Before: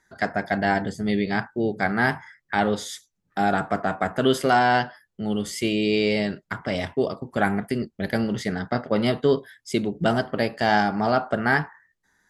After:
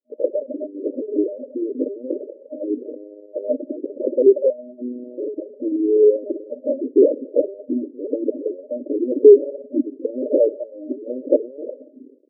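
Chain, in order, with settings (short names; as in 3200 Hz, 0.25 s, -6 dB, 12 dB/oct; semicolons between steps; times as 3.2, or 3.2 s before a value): bit-crush 10-bit; dynamic EQ 440 Hz, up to -5 dB, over -35 dBFS, Q 0.87; spring tank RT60 2.7 s, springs 57 ms, chirp 30 ms, DRR 11.5 dB; LPC vocoder at 8 kHz pitch kept; sample leveller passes 5; FFT band-pass 240–620 Hz; reverb removal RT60 1.4 s; endless phaser +0.97 Hz; gain +4 dB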